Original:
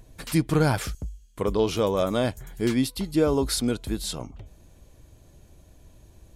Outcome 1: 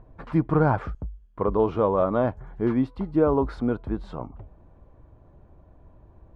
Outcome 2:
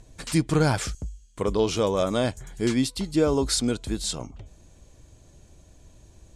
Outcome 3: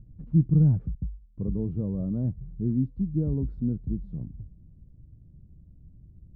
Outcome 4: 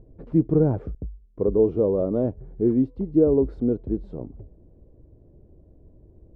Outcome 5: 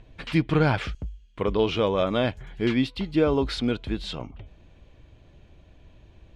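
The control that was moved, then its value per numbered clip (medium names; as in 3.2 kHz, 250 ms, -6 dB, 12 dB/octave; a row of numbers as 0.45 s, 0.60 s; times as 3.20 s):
resonant low-pass, frequency: 1.1 kHz, 7.7 kHz, 170 Hz, 430 Hz, 2.9 kHz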